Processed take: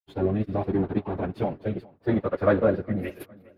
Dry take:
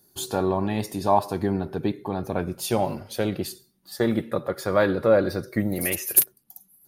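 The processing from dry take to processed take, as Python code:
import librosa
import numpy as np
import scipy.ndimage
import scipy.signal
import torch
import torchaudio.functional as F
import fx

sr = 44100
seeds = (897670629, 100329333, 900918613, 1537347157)

p1 = np.sign(x) * np.maximum(np.abs(x) - 10.0 ** (-37.0 / 20.0), 0.0)
p2 = fx.air_absorb(p1, sr, metres=460.0)
p3 = fx.stretch_vocoder_free(p2, sr, factor=0.52)
p4 = fx.rotary(p3, sr, hz=0.75)
p5 = p4 + fx.echo_feedback(p4, sr, ms=410, feedback_pct=31, wet_db=-23.5, dry=0)
y = p5 * librosa.db_to_amplitude(7.0)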